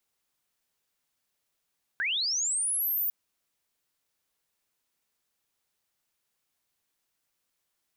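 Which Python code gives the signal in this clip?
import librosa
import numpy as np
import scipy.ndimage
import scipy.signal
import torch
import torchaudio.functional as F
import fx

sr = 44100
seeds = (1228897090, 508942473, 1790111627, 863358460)

y = fx.chirp(sr, length_s=1.1, from_hz=1500.0, to_hz=15000.0, law='linear', from_db=-26.0, to_db=-25.5)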